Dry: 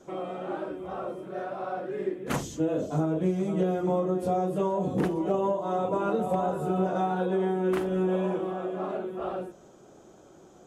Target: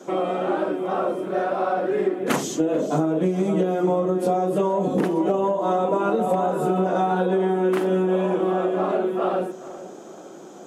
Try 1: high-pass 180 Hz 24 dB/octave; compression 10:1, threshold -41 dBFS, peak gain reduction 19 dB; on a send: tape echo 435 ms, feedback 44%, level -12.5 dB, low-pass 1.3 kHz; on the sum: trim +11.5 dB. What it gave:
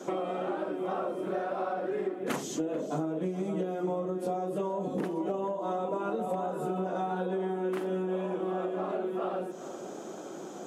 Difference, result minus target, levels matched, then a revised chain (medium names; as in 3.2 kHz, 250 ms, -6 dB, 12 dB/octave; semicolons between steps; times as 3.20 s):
compression: peak gain reduction +11 dB
high-pass 180 Hz 24 dB/octave; compression 10:1, threshold -29 dBFS, peak gain reduction 8 dB; on a send: tape echo 435 ms, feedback 44%, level -12.5 dB, low-pass 1.3 kHz; on the sum: trim +11.5 dB